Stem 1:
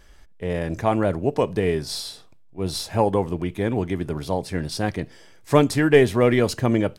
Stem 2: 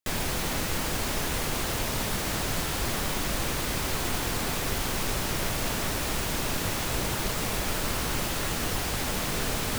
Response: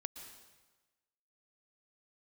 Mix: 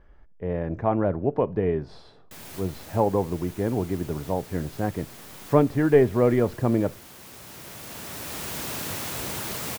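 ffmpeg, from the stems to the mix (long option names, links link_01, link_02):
-filter_complex "[0:a]lowpass=1300,volume=-2.5dB,asplit=3[link_01][link_02][link_03];[link_02]volume=-23.5dB[link_04];[1:a]highpass=89,adelay=2250,volume=-4.5dB,asplit=2[link_05][link_06];[link_06]volume=-15dB[link_07];[link_03]apad=whole_len=530628[link_08];[link_05][link_08]sidechaincompress=threshold=-43dB:ratio=8:attack=16:release=1030[link_09];[2:a]atrim=start_sample=2205[link_10];[link_04][link_07]amix=inputs=2:normalize=0[link_11];[link_11][link_10]afir=irnorm=-1:irlink=0[link_12];[link_01][link_09][link_12]amix=inputs=3:normalize=0,highshelf=frequency=10000:gain=7"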